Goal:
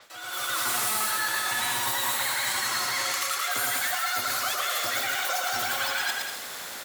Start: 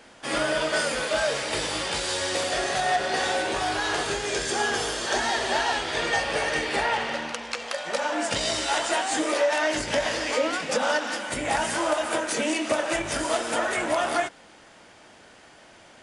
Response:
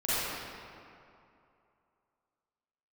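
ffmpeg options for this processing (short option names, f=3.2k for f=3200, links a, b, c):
-filter_complex "[0:a]acrossover=split=470|1400[a][b][c];[c]asoftclip=type=hard:threshold=-30.5dB[d];[a][b][d]amix=inputs=3:normalize=0,lowshelf=f=68:g=-7,areverse,acompressor=threshold=-38dB:ratio=16,areverse,aecho=1:1:270|459|591.3|683.9|748.7:0.631|0.398|0.251|0.158|0.1,asetrate=103194,aresample=44100,dynaudnorm=f=110:g=7:m=10.5dB,adynamicequalizer=threshold=0.00501:dfrequency=7400:dqfactor=0.7:tfrequency=7400:tqfactor=0.7:attack=5:release=100:ratio=0.375:range=3:mode=boostabove:tftype=highshelf"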